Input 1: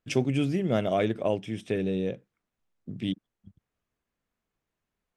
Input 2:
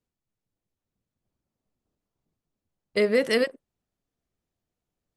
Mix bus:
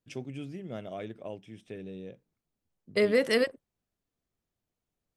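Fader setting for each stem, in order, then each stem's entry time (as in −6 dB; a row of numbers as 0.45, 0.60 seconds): −13.5, −2.5 decibels; 0.00, 0.00 seconds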